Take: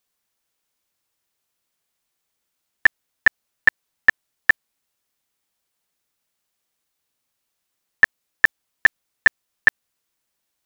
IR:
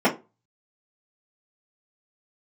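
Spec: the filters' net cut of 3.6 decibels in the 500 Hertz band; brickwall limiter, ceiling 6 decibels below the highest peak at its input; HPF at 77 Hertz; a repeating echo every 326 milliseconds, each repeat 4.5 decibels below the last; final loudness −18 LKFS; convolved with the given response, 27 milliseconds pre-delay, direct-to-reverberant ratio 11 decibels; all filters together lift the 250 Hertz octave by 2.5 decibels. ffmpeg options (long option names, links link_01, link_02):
-filter_complex "[0:a]highpass=77,equalizer=frequency=250:width_type=o:gain=5,equalizer=frequency=500:width_type=o:gain=-6,alimiter=limit=-9dB:level=0:latency=1,aecho=1:1:326|652|978|1304|1630|1956|2282|2608|2934:0.596|0.357|0.214|0.129|0.0772|0.0463|0.0278|0.0167|0.01,asplit=2[link_01][link_02];[1:a]atrim=start_sample=2205,adelay=27[link_03];[link_02][link_03]afir=irnorm=-1:irlink=0,volume=-29.5dB[link_04];[link_01][link_04]amix=inputs=2:normalize=0,volume=7dB"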